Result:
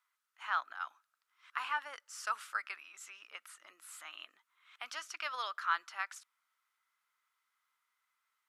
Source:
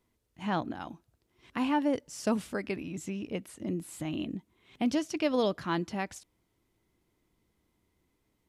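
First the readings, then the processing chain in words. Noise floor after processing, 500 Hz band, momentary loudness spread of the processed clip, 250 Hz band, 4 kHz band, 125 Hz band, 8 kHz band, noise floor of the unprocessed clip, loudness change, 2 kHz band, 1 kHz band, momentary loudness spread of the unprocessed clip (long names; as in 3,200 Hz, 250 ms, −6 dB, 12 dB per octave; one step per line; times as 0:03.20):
−84 dBFS, −23.0 dB, 15 LU, below −40 dB, −3.5 dB, below −40 dB, −4.5 dB, −77 dBFS, −6.5 dB, +2.0 dB, −1.5 dB, 11 LU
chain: four-pole ladder high-pass 1,200 Hz, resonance 70%
level +7 dB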